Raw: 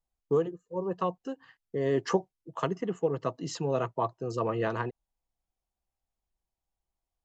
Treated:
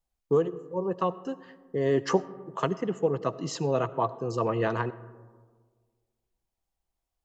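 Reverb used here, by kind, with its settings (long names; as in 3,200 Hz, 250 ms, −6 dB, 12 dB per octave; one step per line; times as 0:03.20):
comb and all-pass reverb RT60 1.6 s, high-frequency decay 0.3×, pre-delay 40 ms, DRR 17 dB
level +2.5 dB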